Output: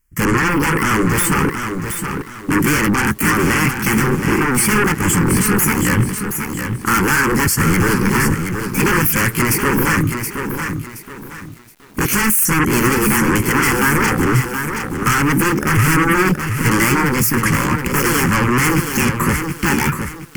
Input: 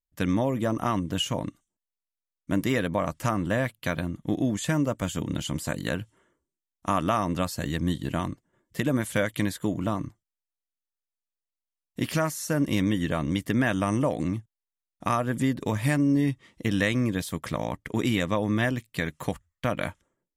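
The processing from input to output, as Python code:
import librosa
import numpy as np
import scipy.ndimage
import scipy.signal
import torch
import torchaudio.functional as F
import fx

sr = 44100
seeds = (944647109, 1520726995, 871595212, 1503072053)

p1 = fx.pitch_ramps(x, sr, semitones=7.5, every_ms=830)
p2 = fx.fold_sine(p1, sr, drive_db=19, ceiling_db=-12.5)
p3 = p1 + F.gain(torch.from_numpy(p2), -5.0).numpy()
p4 = fx.fixed_phaser(p3, sr, hz=1600.0, stages=4)
p5 = fx.echo_crushed(p4, sr, ms=723, feedback_pct=35, bits=8, wet_db=-6.5)
y = F.gain(torch.from_numpy(p5), 7.0).numpy()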